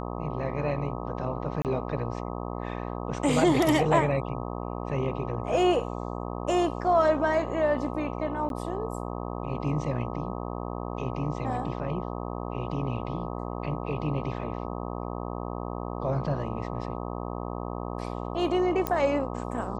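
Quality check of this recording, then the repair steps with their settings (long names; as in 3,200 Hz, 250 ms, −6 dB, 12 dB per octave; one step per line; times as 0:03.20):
mains buzz 60 Hz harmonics 21 −34 dBFS
0:01.62–0:01.65: drop-out 28 ms
0:08.49–0:08.50: drop-out 12 ms
0:18.87: click −12 dBFS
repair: click removal
hum removal 60 Hz, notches 21
repair the gap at 0:01.62, 28 ms
repair the gap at 0:08.49, 12 ms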